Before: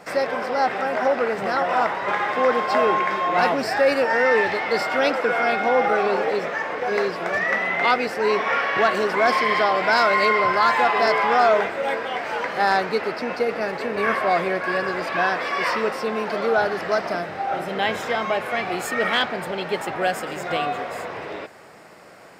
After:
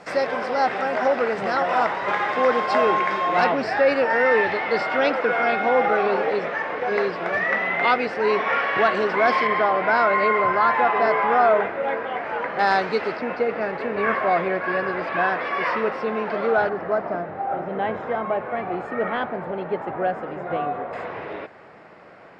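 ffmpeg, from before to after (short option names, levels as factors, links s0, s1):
-af "asetnsamples=n=441:p=0,asendcmd='3.44 lowpass f 3600;9.47 lowpass f 2000;12.59 lowpass f 5200;13.17 lowpass f 2500;16.69 lowpass f 1200;20.93 lowpass f 2600',lowpass=6700"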